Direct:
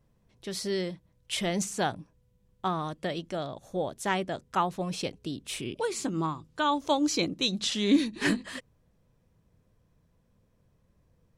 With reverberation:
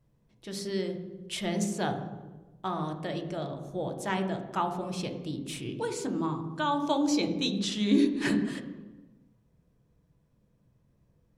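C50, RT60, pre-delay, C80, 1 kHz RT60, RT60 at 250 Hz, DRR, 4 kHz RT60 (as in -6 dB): 8.0 dB, 1.2 s, 3 ms, 10.0 dB, 1.1 s, 1.6 s, 5.0 dB, 0.85 s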